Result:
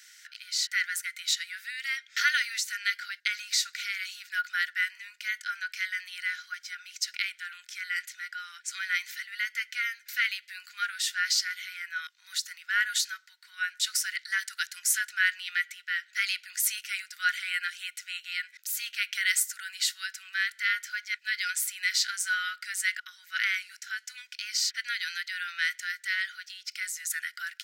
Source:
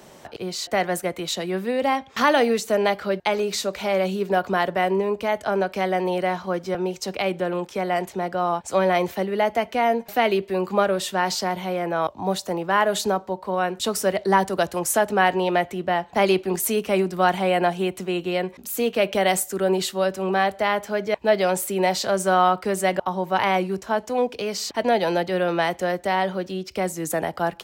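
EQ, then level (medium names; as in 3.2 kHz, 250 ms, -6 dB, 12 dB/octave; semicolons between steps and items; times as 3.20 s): rippled Chebyshev high-pass 1.4 kHz, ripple 6 dB; +3.0 dB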